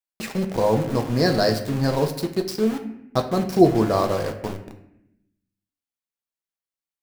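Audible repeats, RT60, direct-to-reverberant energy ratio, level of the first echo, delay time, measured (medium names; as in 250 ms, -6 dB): no echo, 0.80 s, 4.5 dB, no echo, no echo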